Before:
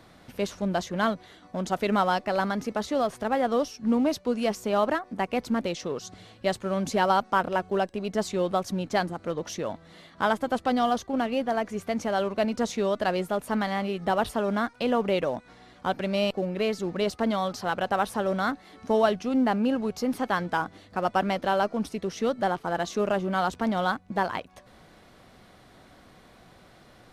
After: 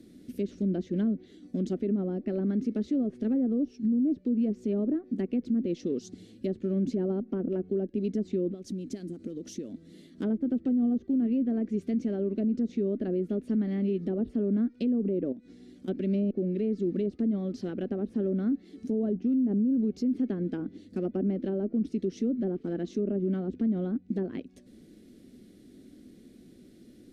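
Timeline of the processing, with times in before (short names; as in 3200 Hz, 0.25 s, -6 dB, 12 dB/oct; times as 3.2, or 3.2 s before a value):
8.48–10.22 compressor 5:1, threshold -35 dBFS
15.32–15.88 compressor 12:1, threshold -41 dBFS
whole clip: treble ducked by the level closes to 840 Hz, closed at -20.5 dBFS; EQ curve 140 Hz 0 dB, 250 Hz +15 dB, 380 Hz +9 dB, 930 Hz -25 dB, 1800 Hz -9 dB, 10000 Hz +4 dB; limiter -16 dBFS; gain -5 dB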